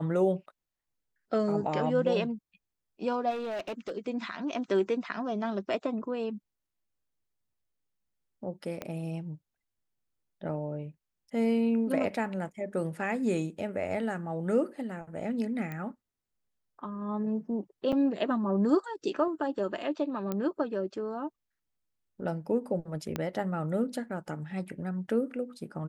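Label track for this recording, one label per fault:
3.300000	3.920000	clipped -31.5 dBFS
8.820000	8.820000	pop -21 dBFS
15.720000	15.720000	pop -25 dBFS
17.920000	17.930000	gap 6.6 ms
20.320000	20.320000	pop -19 dBFS
23.160000	23.160000	pop -17 dBFS

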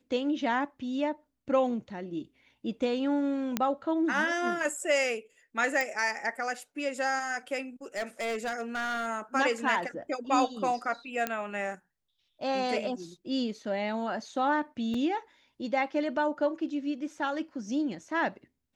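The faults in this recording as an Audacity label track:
3.570000	3.570000	pop -12 dBFS
5.810000	5.810000	pop -16 dBFS
7.960000	9.080000	clipped -28.5 dBFS
11.270000	11.270000	pop -14 dBFS
14.940000	14.940000	gap 3.7 ms

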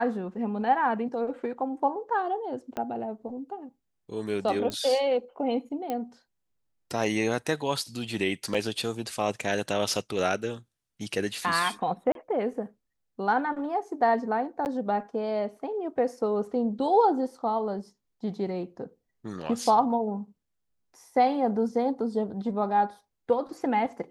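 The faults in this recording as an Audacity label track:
2.770000	2.770000	pop -19 dBFS
4.700000	4.700000	pop -19 dBFS
5.900000	5.900000	pop -18 dBFS
8.540000	8.550000	gap 5.3 ms
12.120000	12.150000	gap 32 ms
14.650000	14.660000	gap 9.4 ms

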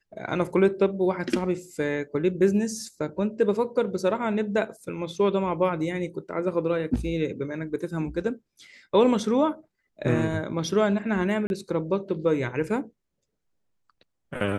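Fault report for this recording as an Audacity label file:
11.470000	11.500000	gap 31 ms

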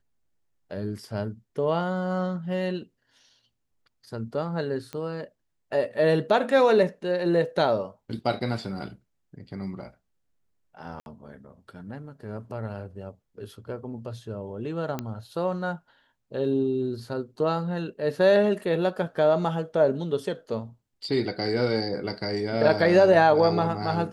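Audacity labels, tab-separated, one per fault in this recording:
4.930000	4.930000	pop -20 dBFS
11.000000	11.060000	gap 61 ms
14.990000	14.990000	pop -16 dBFS

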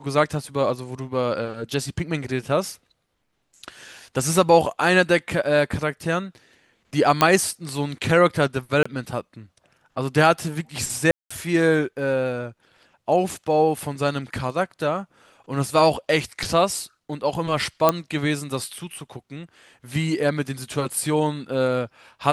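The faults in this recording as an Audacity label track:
7.210000	7.210000	pop -2 dBFS
8.830000	8.860000	gap 25 ms
11.110000	11.300000	gap 0.195 s
17.890000	17.890000	pop -3 dBFS

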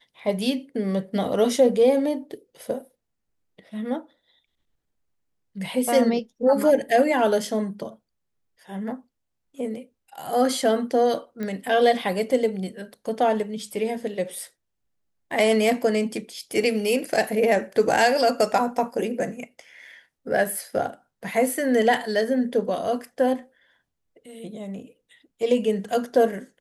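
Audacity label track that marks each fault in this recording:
11.430000	11.430000	pop -19 dBFS

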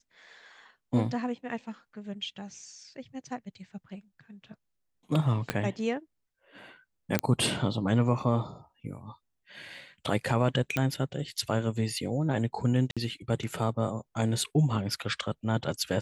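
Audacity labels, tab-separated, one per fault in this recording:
5.500000	5.500000	pop -12 dBFS
7.190000	7.190000	pop -9 dBFS
10.770000	10.770000	pop -14 dBFS
12.910000	12.970000	gap 56 ms

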